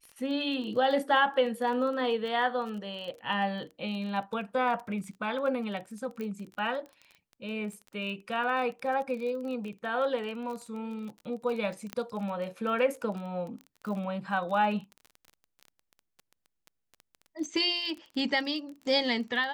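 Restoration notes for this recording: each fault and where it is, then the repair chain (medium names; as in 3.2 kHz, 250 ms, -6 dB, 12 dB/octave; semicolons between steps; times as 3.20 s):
crackle 23 per s -37 dBFS
6.21 s: pop -25 dBFS
11.93 s: pop -18 dBFS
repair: de-click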